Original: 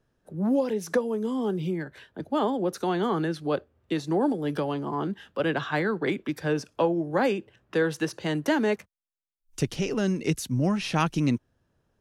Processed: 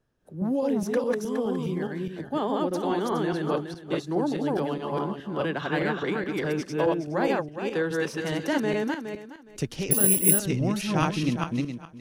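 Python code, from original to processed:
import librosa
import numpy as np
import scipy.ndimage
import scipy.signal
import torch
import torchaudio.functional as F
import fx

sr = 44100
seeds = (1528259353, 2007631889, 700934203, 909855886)

y = fx.reverse_delay_fb(x, sr, ms=208, feedback_pct=41, wet_db=-0.5)
y = fx.resample_bad(y, sr, factor=4, down='filtered', up='zero_stuff', at=(9.91, 10.39))
y = y * 10.0 ** (-3.0 / 20.0)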